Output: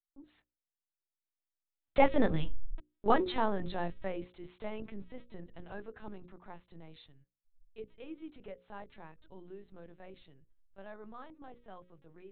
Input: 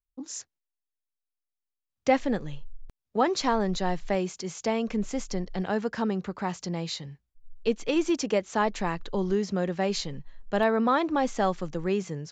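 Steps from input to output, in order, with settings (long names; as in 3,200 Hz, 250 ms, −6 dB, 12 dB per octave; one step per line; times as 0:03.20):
source passing by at 0:02.53, 16 m/s, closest 3.2 metres
linear-prediction vocoder at 8 kHz pitch kept
mains-hum notches 60/120/180/240/300/360/420/480/540 Hz
level +8.5 dB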